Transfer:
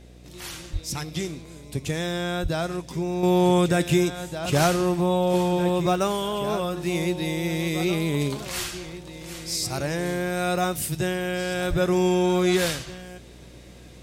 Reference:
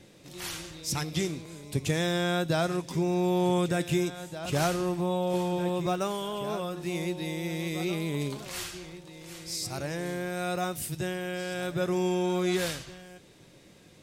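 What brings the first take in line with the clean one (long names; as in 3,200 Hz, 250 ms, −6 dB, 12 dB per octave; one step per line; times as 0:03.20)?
hum removal 60.7 Hz, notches 12
0:00.72–0:00.84: high-pass filter 140 Hz 24 dB per octave
0:02.42–0:02.54: high-pass filter 140 Hz 24 dB per octave
0:11.69–0:11.81: high-pass filter 140 Hz 24 dB per octave
level 0 dB, from 0:03.23 −6.5 dB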